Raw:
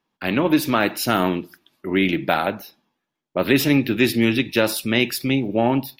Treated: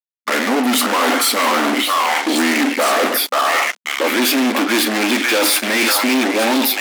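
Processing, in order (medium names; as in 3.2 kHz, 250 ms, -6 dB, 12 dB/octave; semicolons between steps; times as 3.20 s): gliding tape speed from 78% -> 98%; dynamic bell 1.6 kHz, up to +4 dB, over -31 dBFS, Q 1.2; reverse; compression 12:1, threshold -27 dBFS, peak gain reduction 17.5 dB; reverse; repeats whose band climbs or falls 535 ms, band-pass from 1 kHz, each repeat 1.4 oct, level -0.5 dB; fuzz box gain 44 dB, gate -49 dBFS; brick-wall FIR high-pass 220 Hz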